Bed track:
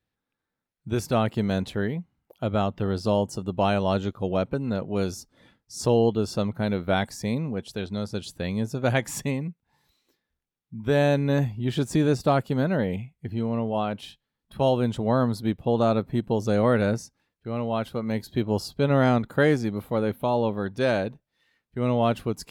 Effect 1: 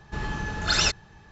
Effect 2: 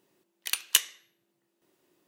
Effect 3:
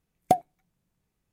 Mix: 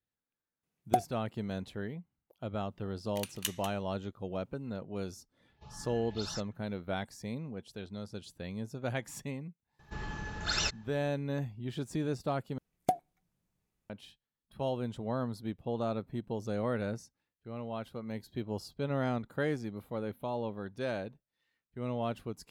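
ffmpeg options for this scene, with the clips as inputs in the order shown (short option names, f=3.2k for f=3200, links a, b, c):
-filter_complex "[3:a]asplit=2[a][b];[1:a]asplit=2[c][d];[0:a]volume=-12dB[e];[a]highpass=130[f];[2:a]asplit=2[g][h];[h]adelay=192.4,volume=-9dB,highshelf=f=4k:g=-4.33[i];[g][i]amix=inputs=2:normalize=0[j];[c]asplit=2[k][l];[l]afreqshift=1.8[m];[k][m]amix=inputs=2:normalize=1[n];[d]asoftclip=type=hard:threshold=-12dB[o];[b]alimiter=limit=-11dB:level=0:latency=1:release=169[p];[e]asplit=2[q][r];[q]atrim=end=12.584[s];[p]atrim=end=1.32,asetpts=PTS-STARTPTS,volume=-4.5dB[t];[r]atrim=start=13.896[u];[f]atrim=end=1.32,asetpts=PTS-STARTPTS,volume=-6dB,afade=t=in:d=0.004:c=hsin,afade=t=out:st=1.316:d=0.004:c=hsin,adelay=630[v];[j]atrim=end=2.07,asetpts=PTS-STARTPTS,volume=-13dB,afade=t=in:d=0.004:c=hsin,afade=t=out:st=2.066:d=0.004:c=hsin,adelay=2700[w];[n]atrim=end=1.31,asetpts=PTS-STARTPTS,volume=-17dB,afade=t=in:d=0.004:c=hsin,afade=t=out:st=1.306:d=0.004:c=hsin,adelay=242109S[x];[o]atrim=end=1.31,asetpts=PTS-STARTPTS,volume=-9dB,afade=t=in:d=0.004:c=hsin,afade=t=out:st=1.306:d=0.004:c=hsin,adelay=9790[y];[s][t]acrossfade=d=0.004:c1=hsin:c2=hsin[z];[z][u]acrossfade=d=0.004:c1=hsin:c2=hsin[aa];[aa][v][w][x][y]amix=inputs=5:normalize=0"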